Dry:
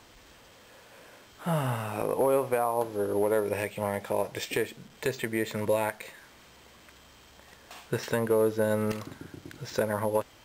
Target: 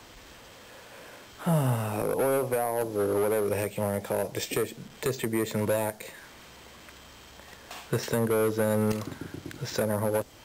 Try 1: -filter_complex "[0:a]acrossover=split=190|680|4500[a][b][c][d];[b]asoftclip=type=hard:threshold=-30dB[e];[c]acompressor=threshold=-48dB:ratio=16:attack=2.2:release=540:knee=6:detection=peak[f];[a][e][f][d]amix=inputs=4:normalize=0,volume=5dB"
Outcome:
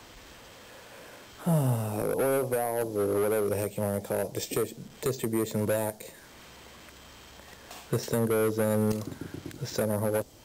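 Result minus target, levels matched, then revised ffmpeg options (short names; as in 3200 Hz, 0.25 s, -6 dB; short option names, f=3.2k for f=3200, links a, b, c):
compressor: peak gain reduction +9.5 dB
-filter_complex "[0:a]acrossover=split=190|680|4500[a][b][c][d];[b]asoftclip=type=hard:threshold=-30dB[e];[c]acompressor=threshold=-38dB:ratio=16:attack=2.2:release=540:knee=6:detection=peak[f];[a][e][f][d]amix=inputs=4:normalize=0,volume=5dB"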